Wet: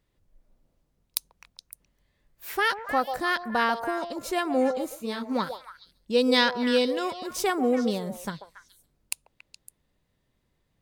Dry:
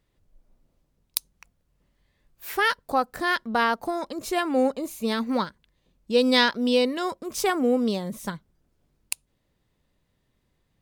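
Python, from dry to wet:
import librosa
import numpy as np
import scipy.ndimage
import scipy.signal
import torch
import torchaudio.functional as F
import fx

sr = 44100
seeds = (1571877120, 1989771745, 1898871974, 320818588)

y = fx.echo_stepped(x, sr, ms=140, hz=640.0, octaves=1.4, feedback_pct=70, wet_db=-5.5)
y = fx.detune_double(y, sr, cents=fx.line((4.94, 23.0), (5.34, 34.0)), at=(4.94, 5.34), fade=0.02)
y = y * librosa.db_to_amplitude(-2.0)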